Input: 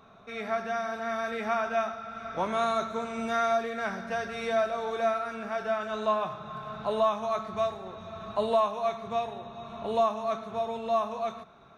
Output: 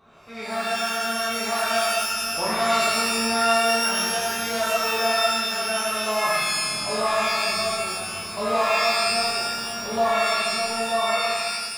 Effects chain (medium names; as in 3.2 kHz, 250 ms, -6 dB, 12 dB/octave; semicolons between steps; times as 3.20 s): pitch-shifted reverb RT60 1.2 s, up +12 st, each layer -2 dB, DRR -7.5 dB; trim -4.5 dB